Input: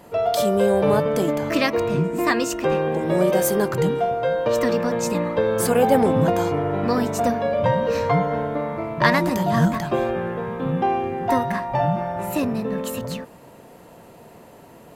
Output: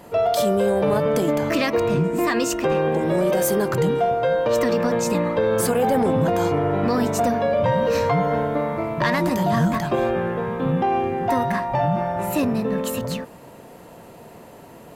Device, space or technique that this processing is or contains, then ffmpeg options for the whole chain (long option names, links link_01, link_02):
soft clipper into limiter: -filter_complex "[0:a]asoftclip=type=tanh:threshold=-7.5dB,alimiter=limit=-14.5dB:level=0:latency=1:release=50,asettb=1/sr,asplit=3[link_01][link_02][link_03];[link_01]atrim=end=7.684[link_04];[link_02]atrim=start=7.68:end=9.02,asetpts=PTS-STARTPTS,afade=type=in:duration=0.004:curve=qsin,afade=type=out:start_time=1.336:duration=0.004:curve=qsin,highshelf=frequency=7100:gain=5.5[link_05];[link_03]atrim=start=9.016[link_06];[link_04][link_05]acrossfade=duration=0.004:curve1=hsin:curve2=qsin[link_07];[link_07][link_06]acrossfade=duration=0.004:curve1=qsin:curve2=hsin,volume=2.5dB"